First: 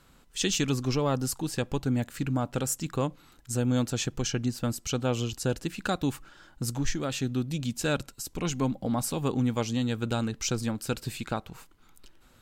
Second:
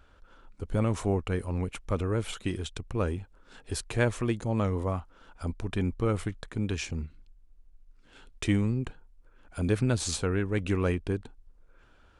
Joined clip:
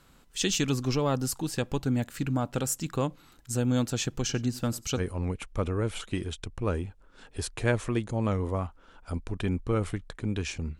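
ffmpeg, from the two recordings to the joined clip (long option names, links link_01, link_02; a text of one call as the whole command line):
ffmpeg -i cue0.wav -i cue1.wav -filter_complex "[0:a]asettb=1/sr,asplit=3[link_01][link_02][link_03];[link_01]atrim=end=4.204[link_04];[link_02]atrim=start=4.2:end=5.01,asetpts=PTS-STARTPTS,afade=type=in:duration=0.004:curve=qsin,afade=type=out:start_time=0.806:duration=0.004:curve=qsin,aecho=1:1:92:0.0944,atrim=end_sample=35721[link_05];[link_03]atrim=start=5.006[link_06];[link_04][link_05]acrossfade=duration=0.004:curve1=hsin:curve2=qsin[link_07];[link_07][link_06]acrossfade=duration=0.004:curve1=qsin:curve2=hsin,apad=whole_dur=10.79,atrim=end=10.79,atrim=end=5.01,asetpts=PTS-STARTPTS[link_08];[1:a]atrim=start=1.28:end=7.12,asetpts=PTS-STARTPTS[link_09];[link_08][link_09]acrossfade=duration=0.06:curve1=tri:curve2=tri" out.wav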